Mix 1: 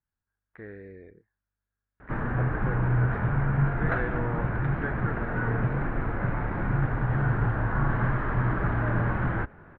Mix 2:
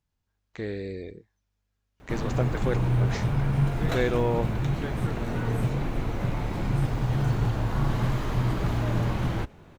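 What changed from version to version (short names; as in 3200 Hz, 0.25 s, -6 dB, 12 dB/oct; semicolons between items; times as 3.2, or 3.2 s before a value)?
background -10.0 dB; master: remove ladder low-pass 1800 Hz, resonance 60%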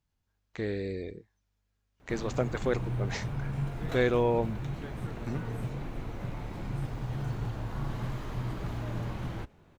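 background -9.0 dB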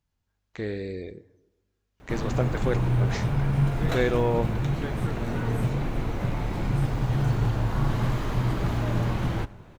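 background +8.0 dB; reverb: on, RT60 1.1 s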